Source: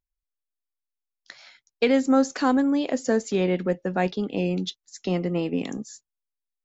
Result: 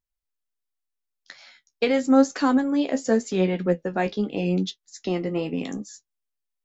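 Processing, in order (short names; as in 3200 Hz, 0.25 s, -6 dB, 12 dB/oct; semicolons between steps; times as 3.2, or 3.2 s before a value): flange 0.85 Hz, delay 9.7 ms, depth 5.4 ms, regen +39%; gain +4 dB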